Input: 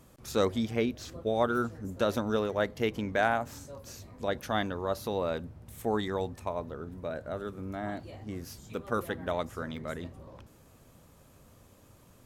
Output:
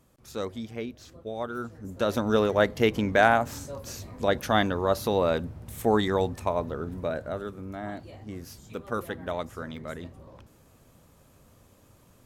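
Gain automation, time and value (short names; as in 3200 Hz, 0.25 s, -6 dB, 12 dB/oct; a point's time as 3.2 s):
1.51 s -6 dB
2.42 s +7 dB
7.01 s +7 dB
7.63 s 0 dB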